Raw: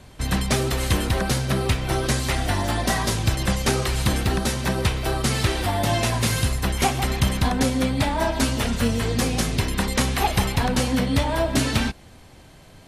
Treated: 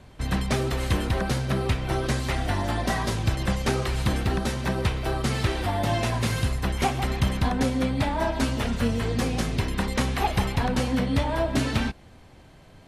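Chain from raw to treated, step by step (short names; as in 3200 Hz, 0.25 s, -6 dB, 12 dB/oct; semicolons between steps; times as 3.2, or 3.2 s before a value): high shelf 4500 Hz -9 dB; gain -2.5 dB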